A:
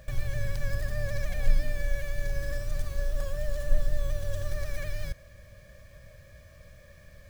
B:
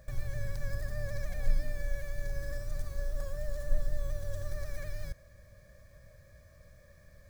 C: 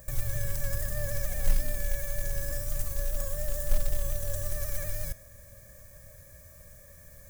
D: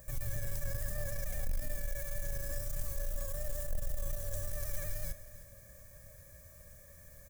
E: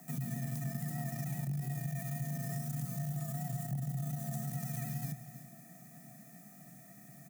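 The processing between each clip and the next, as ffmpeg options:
ffmpeg -i in.wav -af "equalizer=frequency=2900:width=2.5:gain=-10,volume=-5dB" out.wav
ffmpeg -i in.wav -af "aexciter=amount=5.4:drive=4.2:freq=6300,flanger=delay=8.6:depth=4.3:regen=89:speed=0.37:shape=triangular,acrusher=bits=5:mode=log:mix=0:aa=0.000001,volume=8dB" out.wav
ffmpeg -i in.wav -af "aeval=exprs='(tanh(17.8*val(0)+0.2)-tanh(0.2))/17.8':channel_layout=same,aecho=1:1:312:0.158,volume=-3.5dB" out.wav
ffmpeg -i in.wav -af "afreqshift=120,bandreject=frequency=60:width_type=h:width=6,bandreject=frequency=120:width_type=h:width=6,acompressor=threshold=-35dB:ratio=3" out.wav

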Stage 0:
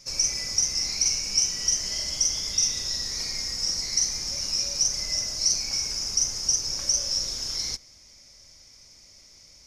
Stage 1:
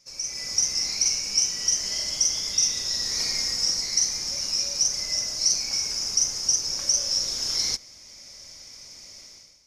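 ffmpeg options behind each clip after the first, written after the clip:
ffmpeg -i in.wav -af "lowshelf=frequency=110:gain=-9.5,dynaudnorm=framelen=110:gausssize=7:maxgain=16.5dB,volume=-9dB" out.wav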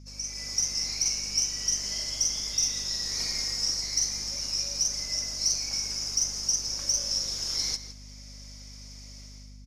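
ffmpeg -i in.wav -filter_complex "[0:a]aeval=exprs='val(0)+0.00794*(sin(2*PI*50*n/s)+sin(2*PI*2*50*n/s)/2+sin(2*PI*3*50*n/s)/3+sin(2*PI*4*50*n/s)/4+sin(2*PI*5*50*n/s)/5)':channel_layout=same,aeval=exprs='0.335*(cos(1*acos(clip(val(0)/0.335,-1,1)))-cos(1*PI/2))+0.00668*(cos(4*acos(clip(val(0)/0.335,-1,1)))-cos(4*PI/2))+0.00944*(cos(5*acos(clip(val(0)/0.335,-1,1)))-cos(5*PI/2))+0.00531*(cos(7*acos(clip(val(0)/0.335,-1,1)))-cos(7*PI/2))':channel_layout=same,asplit=2[link_01][link_02];[link_02]adelay=163.3,volume=-12dB,highshelf=frequency=4000:gain=-3.67[link_03];[link_01][link_03]amix=inputs=2:normalize=0,volume=-4.5dB" out.wav

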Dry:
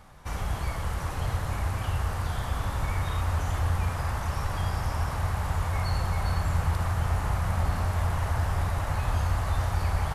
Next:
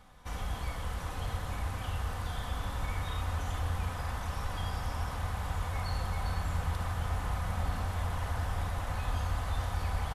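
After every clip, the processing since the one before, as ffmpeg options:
ffmpeg -i in.wav -af "equalizer=frequency=3400:width_type=o:width=0.38:gain=5,aecho=1:1:4:0.33,volume=-6dB" out.wav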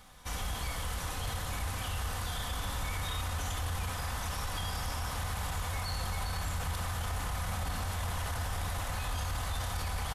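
ffmpeg -i in.wav -af "highshelf=frequency=2700:gain=11,alimiter=level_in=2.5dB:limit=-24dB:level=0:latency=1:release=13,volume=-2.5dB" out.wav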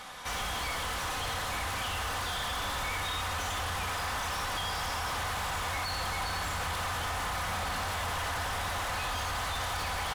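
ffmpeg -i in.wav -filter_complex "[0:a]asplit=2[link_01][link_02];[link_02]highpass=frequency=720:poles=1,volume=22dB,asoftclip=type=tanh:threshold=-26dB[link_03];[link_01][link_03]amix=inputs=2:normalize=0,lowpass=frequency=3600:poles=1,volume=-6dB" out.wav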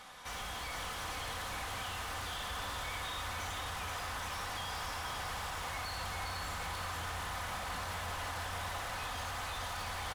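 ffmpeg -i in.wav -af "aecho=1:1:477:0.562,volume=-7.5dB" out.wav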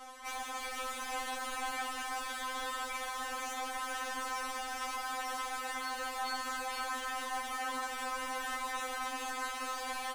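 ffmpeg -i in.wav -af "afftfilt=real='re*3.46*eq(mod(b,12),0)':imag='im*3.46*eq(mod(b,12),0)':win_size=2048:overlap=0.75,volume=4dB" out.wav

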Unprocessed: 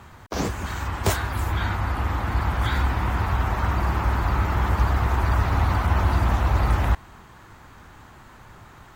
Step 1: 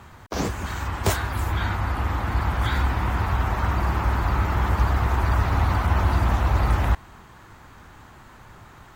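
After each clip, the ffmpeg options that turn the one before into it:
ffmpeg -i in.wav -af anull out.wav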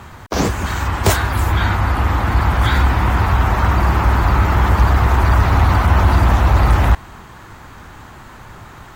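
ffmpeg -i in.wav -af "asoftclip=type=tanh:threshold=-10.5dB,volume=9dB" out.wav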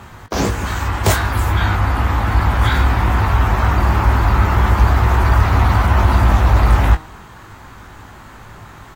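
ffmpeg -i in.wav -filter_complex "[0:a]asplit=2[link_01][link_02];[link_02]adelay=19,volume=-7.5dB[link_03];[link_01][link_03]amix=inputs=2:normalize=0,bandreject=frequency=156.3:width_type=h:width=4,bandreject=frequency=312.6:width_type=h:width=4,bandreject=frequency=468.9:width_type=h:width=4,bandreject=frequency=625.2:width_type=h:width=4,bandreject=frequency=781.5:width_type=h:width=4,bandreject=frequency=937.8:width_type=h:width=4,bandreject=frequency=1094.1:width_type=h:width=4,bandreject=frequency=1250.4:width_type=h:width=4,bandreject=frequency=1406.7:width_type=h:width=4,bandreject=frequency=1563:width_type=h:width=4,bandreject=frequency=1719.3:width_type=h:width=4,bandreject=frequency=1875.6:width_type=h:width=4,bandreject=frequency=2031.9:width_type=h:width=4,bandreject=frequency=2188.2:width_type=h:width=4,bandreject=frequency=2344.5:width_type=h:width=4,bandreject=frequency=2500.8:width_type=h:width=4,bandreject=frequency=2657.1:width_type=h:width=4,bandreject=frequency=2813.4:width_type=h:width=4,bandreject=frequency=2969.7:width_type=h:width=4,bandreject=frequency=3126:width_type=h:width=4,bandreject=frequency=3282.3:width_type=h:width=4,bandreject=frequency=3438.6:width_type=h:width=4,bandreject=frequency=3594.9:width_type=h:width=4,bandreject=frequency=3751.2:width_type=h:width=4,bandreject=frequency=3907.5:width_type=h:width=4,bandreject=frequency=4063.8:width_type=h:width=4,bandreject=frequency=4220.1:width_type=h:width=4,bandreject=frequency=4376.4:width_type=h:width=4,bandreject=frequency=4532.7:width_type=h:width=4,bandreject=frequency=4689:width_type=h:width=4,bandreject=frequency=4845.3:width_type=h:width=4,bandreject=frequency=5001.6:width_type=h:width=4,bandreject=frequency=5157.9:width_type=h:width=4,bandreject=frequency=5314.2:width_type=h:width=4,bandreject=frequency=5470.5:width_type=h:width=4,bandreject=frequency=5626.8:width_type=h:width=4,bandreject=frequency=5783.1:width_type=h:width=4,bandreject=frequency=5939.4:width_type=h:width=4,bandreject=frequency=6095.7:width_type=h:width=4,bandreject=frequency=6252:width_type=h:width=4,volume=-1dB" out.wav

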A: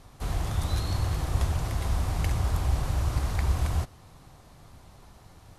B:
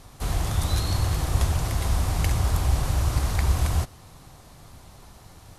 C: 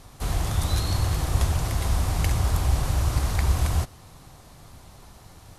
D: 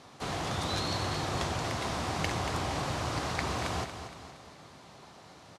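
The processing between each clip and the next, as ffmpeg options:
ffmpeg -i in.wav -af "highshelf=frequency=4200:gain=5.5,volume=3.5dB" out.wav
ffmpeg -i in.wav -af anull out.wav
ffmpeg -i in.wav -af "highpass=200,lowpass=5400,aecho=1:1:233|466|699|932|1165:0.335|0.161|0.0772|0.037|0.0178" out.wav

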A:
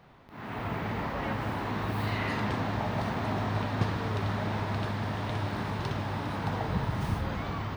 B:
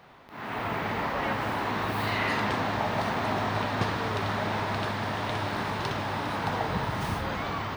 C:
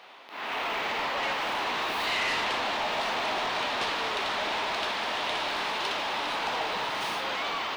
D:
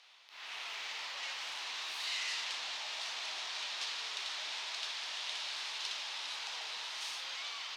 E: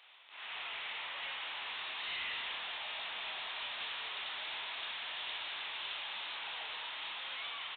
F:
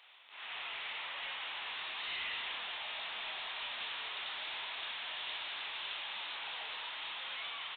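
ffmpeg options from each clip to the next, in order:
ffmpeg -i in.wav -af "lowshelf=frequency=260:gain=-10.5,volume=6dB" out.wav
ffmpeg -i in.wav -filter_complex "[0:a]highpass=290,asplit=2[link_01][link_02];[link_02]highpass=frequency=720:poles=1,volume=18dB,asoftclip=type=tanh:threshold=-14dB[link_03];[link_01][link_03]amix=inputs=2:normalize=0,lowpass=frequency=2900:poles=1,volume=-6dB,highshelf=frequency=2200:width_type=q:width=1.5:gain=6,volume=-6.5dB" out.wav
ffmpeg -i in.wav -af "bandpass=frequency=6100:width_type=q:width=1.3:csg=0" out.wav
ffmpeg -i in.wav -filter_complex "[0:a]aresample=8000,asoftclip=type=tanh:threshold=-35.5dB,aresample=44100,asplit=2[link_01][link_02];[link_02]adelay=27,volume=-11dB[link_03];[link_01][link_03]amix=inputs=2:normalize=0,volume=2dB" out.wav
ffmpeg -i in.wav -af "flanger=delay=0.9:depth=6.7:regen=88:speed=0.86:shape=triangular,volume=4.5dB" out.wav

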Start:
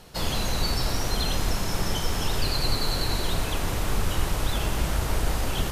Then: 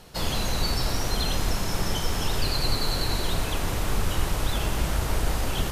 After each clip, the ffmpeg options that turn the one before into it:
ffmpeg -i in.wav -af anull out.wav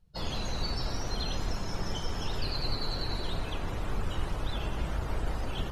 ffmpeg -i in.wav -af "afftdn=noise_reduction=26:noise_floor=-38,volume=-6.5dB" out.wav

